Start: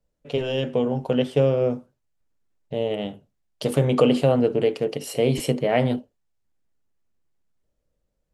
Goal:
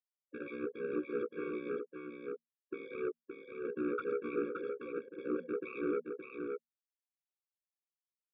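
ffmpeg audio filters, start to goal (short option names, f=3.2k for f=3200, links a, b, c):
-af "afftfilt=real='re*gte(hypot(re,im),0.158)':imag='im*gte(hypot(re,im),0.158)':win_size=1024:overlap=0.75,afftdn=nr=23:nf=-35,tiltshelf=f=660:g=-3.5,areverse,acompressor=threshold=-29dB:ratio=16,areverse,alimiter=level_in=5dB:limit=-24dB:level=0:latency=1:release=23,volume=-5dB,acontrast=71,afreqshift=200,aeval=exprs='val(0)*sin(2*PI*34*n/s)':c=same,aresample=16000,asoftclip=type=tanh:threshold=-31.5dB,aresample=44100,highpass=140,equalizer=f=230:t=q:w=4:g=6,equalizer=f=500:t=q:w=4:g=-3,equalizer=f=830:t=q:w=4:g=7,equalizer=f=2.2k:t=q:w=4:g=5,lowpass=f=2.9k:w=0.5412,lowpass=f=2.9k:w=1.3066,aecho=1:1:570:0.562,afftfilt=real='re*eq(mod(floor(b*sr/1024/550),2),0)':imag='im*eq(mod(floor(b*sr/1024/550),2),0)':win_size=1024:overlap=0.75,volume=3.5dB"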